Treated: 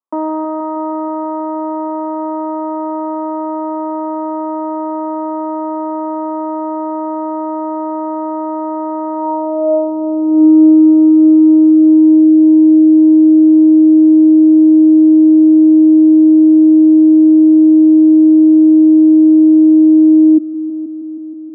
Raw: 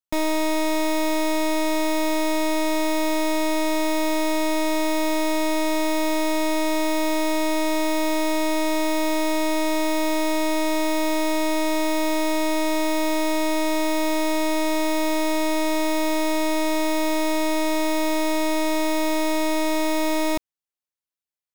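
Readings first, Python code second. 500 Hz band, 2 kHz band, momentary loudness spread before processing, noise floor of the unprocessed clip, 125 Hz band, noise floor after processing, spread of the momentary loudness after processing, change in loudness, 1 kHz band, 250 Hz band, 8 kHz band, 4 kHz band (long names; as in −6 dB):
+6.5 dB, below −20 dB, 0 LU, below −85 dBFS, can't be measured, −20 dBFS, 13 LU, +15.0 dB, +4.0 dB, +17.5 dB, below −40 dB, below −40 dB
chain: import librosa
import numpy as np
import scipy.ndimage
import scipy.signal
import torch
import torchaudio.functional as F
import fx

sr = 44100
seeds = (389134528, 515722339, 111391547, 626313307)

p1 = scipy.signal.sosfilt(scipy.signal.cheby1(5, 1.0, [250.0, 1800.0], 'bandpass', fs=sr, output='sos'), x)
p2 = fx.tilt_eq(p1, sr, slope=-4.5)
p3 = fx.rider(p2, sr, range_db=10, speed_s=0.5)
p4 = fx.filter_sweep_lowpass(p3, sr, from_hz=1100.0, to_hz=310.0, start_s=9.14, end_s=10.46, q=7.4)
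p5 = p4 + fx.echo_heads(p4, sr, ms=159, heads='all three', feedback_pct=70, wet_db=-16.5, dry=0)
y = p5 * 10.0 ** (-2.5 / 20.0)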